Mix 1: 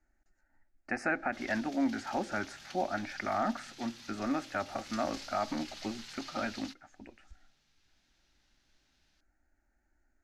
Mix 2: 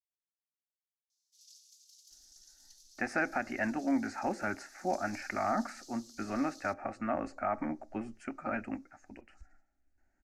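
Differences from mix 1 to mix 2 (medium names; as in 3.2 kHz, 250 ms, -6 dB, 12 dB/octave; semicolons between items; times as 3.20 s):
speech: entry +2.10 s; background: add inverse Chebyshev high-pass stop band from 1 kHz, stop band 80 dB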